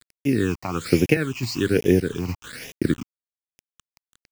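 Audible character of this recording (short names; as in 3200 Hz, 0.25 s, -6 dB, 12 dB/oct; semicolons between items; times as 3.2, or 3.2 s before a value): a quantiser's noise floor 6-bit, dither none; random-step tremolo; phasing stages 8, 1.2 Hz, lowest notch 450–1300 Hz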